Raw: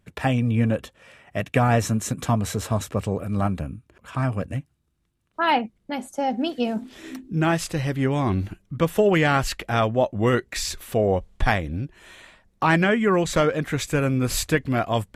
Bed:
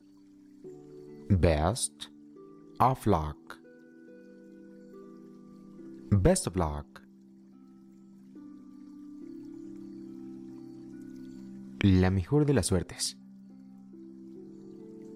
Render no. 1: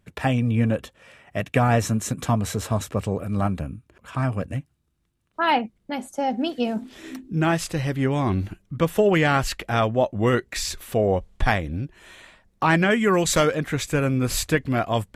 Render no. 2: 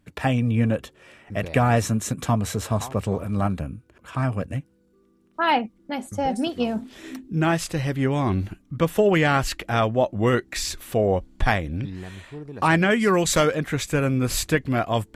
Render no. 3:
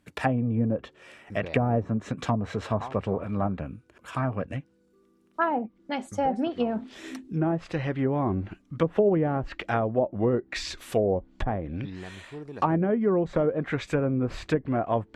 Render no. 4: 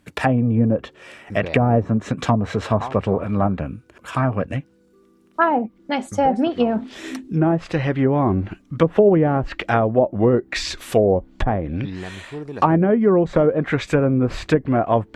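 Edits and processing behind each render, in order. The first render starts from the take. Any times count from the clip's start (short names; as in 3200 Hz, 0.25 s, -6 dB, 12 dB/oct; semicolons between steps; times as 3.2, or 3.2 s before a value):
12.9–13.55 high shelf 3700 Hz +10.5 dB
add bed -12.5 dB
treble ducked by the level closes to 550 Hz, closed at -16.5 dBFS; low shelf 180 Hz -8.5 dB
gain +8 dB; limiter -3 dBFS, peak gain reduction 2.5 dB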